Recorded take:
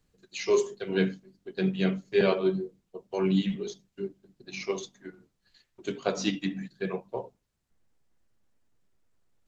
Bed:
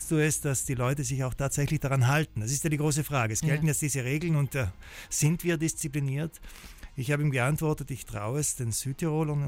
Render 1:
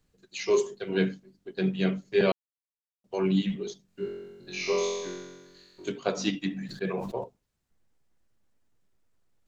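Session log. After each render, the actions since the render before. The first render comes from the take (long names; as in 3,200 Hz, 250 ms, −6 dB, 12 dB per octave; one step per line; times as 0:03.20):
0:02.32–0:03.04: silence
0:03.86–0:05.89: flutter between parallel walls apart 3.8 metres, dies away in 1.3 s
0:06.51–0:07.24: level that may fall only so fast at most 56 dB per second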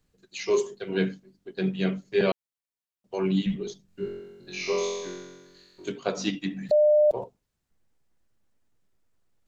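0:03.46–0:04.20: low-shelf EQ 120 Hz +10 dB
0:06.71–0:07.11: beep over 601 Hz −15.5 dBFS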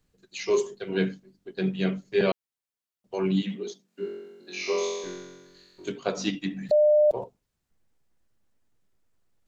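0:03.43–0:05.04: high-pass filter 220 Hz 24 dB per octave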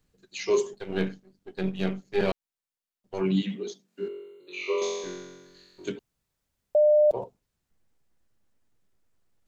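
0:00.73–0:03.21: gain on one half-wave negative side −7 dB
0:04.08–0:04.82: phaser with its sweep stopped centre 1,100 Hz, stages 8
0:05.99–0:06.75: fill with room tone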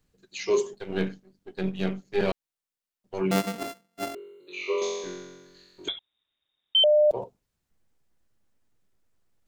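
0:03.31–0:04.15: samples sorted by size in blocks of 64 samples
0:05.88–0:06.84: voice inversion scrambler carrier 3,700 Hz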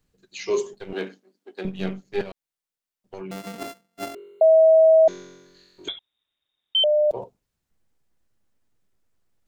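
0:00.93–0:01.65: high-pass filter 260 Hz 24 dB per octave
0:02.21–0:03.59: downward compressor 12 to 1, threshold −31 dBFS
0:04.41–0:05.08: beep over 642 Hz −10.5 dBFS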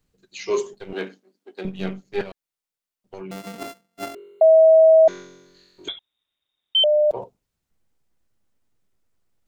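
notch filter 1,700 Hz, Q 30
dynamic equaliser 1,500 Hz, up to +7 dB, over −35 dBFS, Q 0.85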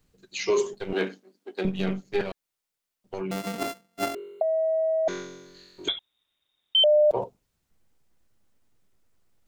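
compressor whose output falls as the input rises −17 dBFS, ratio −0.5
brickwall limiter −15 dBFS, peak gain reduction 7 dB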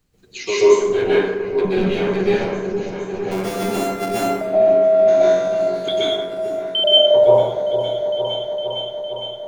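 echo whose low-pass opens from repeat to repeat 458 ms, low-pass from 750 Hz, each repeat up 1 octave, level −6 dB
dense smooth reverb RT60 1.1 s, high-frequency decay 0.55×, pre-delay 115 ms, DRR −9 dB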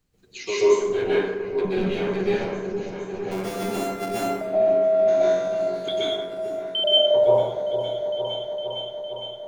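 level −5.5 dB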